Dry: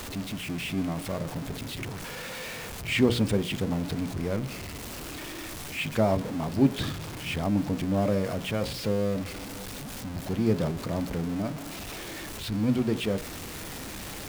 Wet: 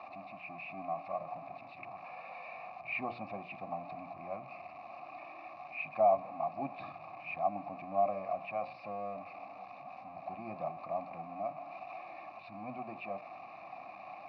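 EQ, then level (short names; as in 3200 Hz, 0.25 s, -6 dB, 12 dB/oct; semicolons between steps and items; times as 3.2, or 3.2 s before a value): vowel filter a; speaker cabinet 130–3300 Hz, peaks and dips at 240 Hz -4 dB, 970 Hz -3 dB, 2900 Hz -9 dB; fixed phaser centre 2200 Hz, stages 8; +9.0 dB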